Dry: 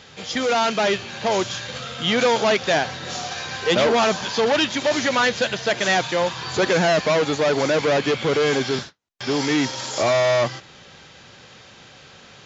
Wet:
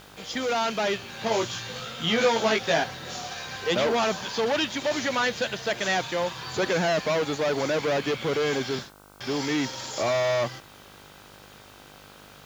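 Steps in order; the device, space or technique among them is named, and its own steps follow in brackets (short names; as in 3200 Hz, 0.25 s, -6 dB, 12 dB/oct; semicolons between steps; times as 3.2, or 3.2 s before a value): 1.17–2.84 doubler 18 ms -2 dB; video cassette with head-switching buzz (buzz 50 Hz, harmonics 31, -47 dBFS -1 dB/oct; white noise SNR 31 dB); gain -6 dB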